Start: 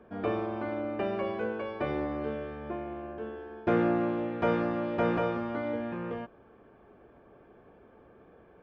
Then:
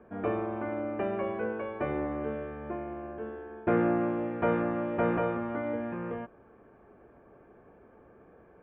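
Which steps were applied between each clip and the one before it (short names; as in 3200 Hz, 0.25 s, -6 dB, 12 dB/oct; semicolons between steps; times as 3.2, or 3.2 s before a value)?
LPF 2500 Hz 24 dB/oct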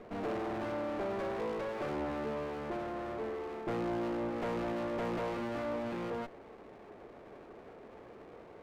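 soft clip -28 dBFS, distortion -10 dB; overdrive pedal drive 18 dB, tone 1400 Hz, clips at -28 dBFS; running maximum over 17 samples; gain -1 dB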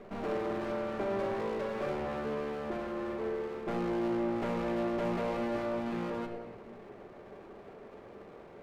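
shoebox room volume 2100 m³, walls mixed, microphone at 1.2 m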